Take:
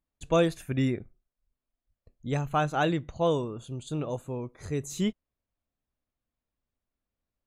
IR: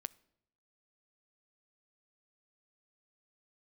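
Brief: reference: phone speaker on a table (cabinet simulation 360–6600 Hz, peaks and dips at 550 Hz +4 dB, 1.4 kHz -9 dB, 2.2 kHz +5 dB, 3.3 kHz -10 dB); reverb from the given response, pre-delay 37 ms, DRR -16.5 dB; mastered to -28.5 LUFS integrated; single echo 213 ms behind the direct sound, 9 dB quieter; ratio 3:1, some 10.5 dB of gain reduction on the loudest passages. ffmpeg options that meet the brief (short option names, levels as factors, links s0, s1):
-filter_complex "[0:a]acompressor=threshold=0.0224:ratio=3,aecho=1:1:213:0.355,asplit=2[s0][s1];[1:a]atrim=start_sample=2205,adelay=37[s2];[s1][s2]afir=irnorm=-1:irlink=0,volume=9.44[s3];[s0][s3]amix=inputs=2:normalize=0,highpass=f=360:w=0.5412,highpass=f=360:w=1.3066,equalizer=f=550:t=q:w=4:g=4,equalizer=f=1400:t=q:w=4:g=-9,equalizer=f=2200:t=q:w=4:g=5,equalizer=f=3300:t=q:w=4:g=-10,lowpass=f=6600:w=0.5412,lowpass=f=6600:w=1.3066,volume=0.501"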